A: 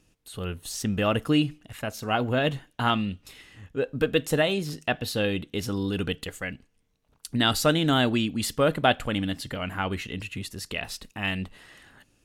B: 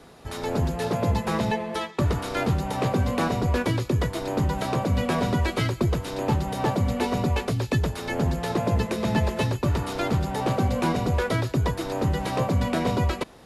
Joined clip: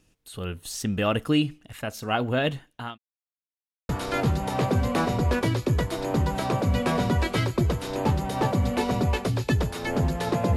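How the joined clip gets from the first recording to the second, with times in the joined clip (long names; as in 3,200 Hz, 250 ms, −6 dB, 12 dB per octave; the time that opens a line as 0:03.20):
A
0:02.36–0:02.98: fade out equal-power
0:02.98–0:03.89: silence
0:03.89: continue with B from 0:02.12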